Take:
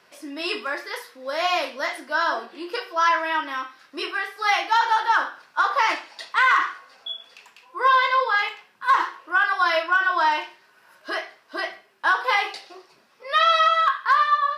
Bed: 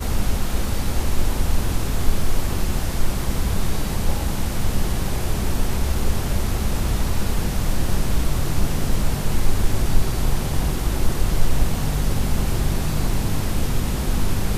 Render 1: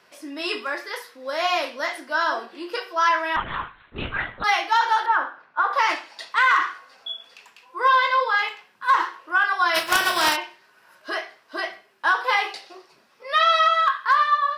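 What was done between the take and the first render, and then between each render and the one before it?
0:03.36–0:04.44: linear-prediction vocoder at 8 kHz whisper
0:05.06–0:05.73: low-pass filter 1,900 Hz
0:09.74–0:10.35: compressing power law on the bin magnitudes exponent 0.45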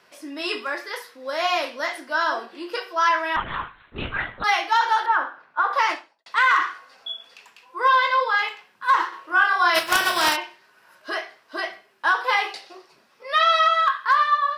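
0:05.82–0:06.26: fade out and dull
0:09.09–0:09.79: double-tracking delay 31 ms −2.5 dB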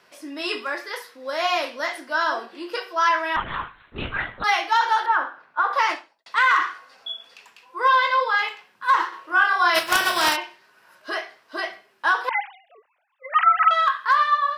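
0:12.29–0:13.71: three sine waves on the formant tracks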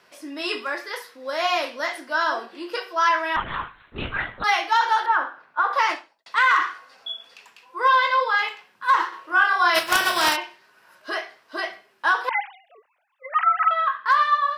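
0:13.29–0:14.06: high-frequency loss of the air 420 metres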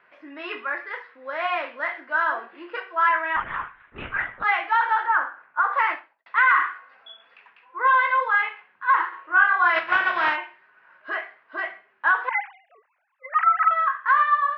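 low-pass filter 2,000 Hz 24 dB per octave
tilt shelving filter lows −8 dB, about 1,200 Hz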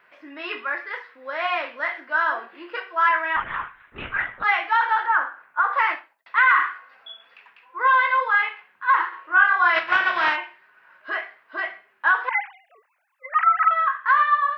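high-shelf EQ 4,500 Hz +11.5 dB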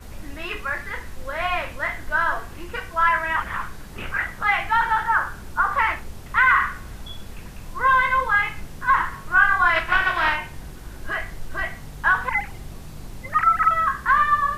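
mix in bed −16 dB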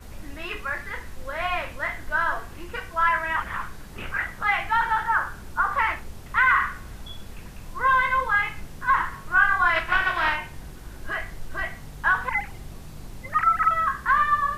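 level −2.5 dB

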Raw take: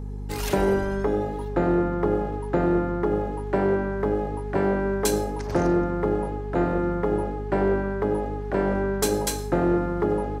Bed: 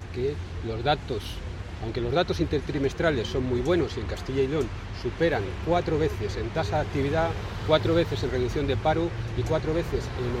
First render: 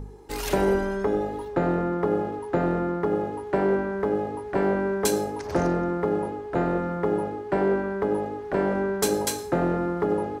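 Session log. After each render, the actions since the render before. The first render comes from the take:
hum removal 50 Hz, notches 7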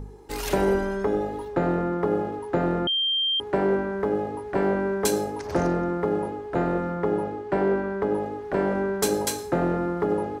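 0:02.87–0:03.40: beep over 3,170 Hz −21 dBFS
0:06.91–0:08.21: high-shelf EQ 10,000 Hz −8 dB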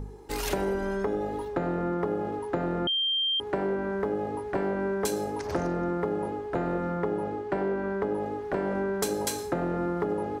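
downward compressor, threshold −25 dBFS, peak gain reduction 7.5 dB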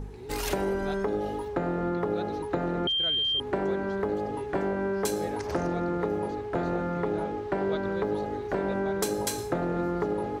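mix in bed −16.5 dB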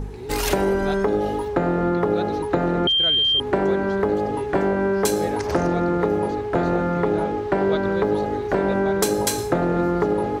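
level +8 dB

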